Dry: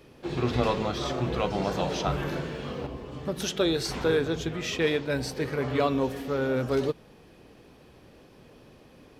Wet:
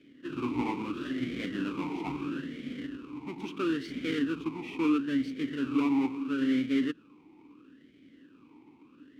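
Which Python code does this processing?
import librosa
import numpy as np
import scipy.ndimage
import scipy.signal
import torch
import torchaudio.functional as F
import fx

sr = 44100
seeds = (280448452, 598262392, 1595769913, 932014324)

y = fx.halfwave_hold(x, sr)
y = fx.vowel_sweep(y, sr, vowels='i-u', hz=0.75)
y = y * librosa.db_to_amplitude(3.0)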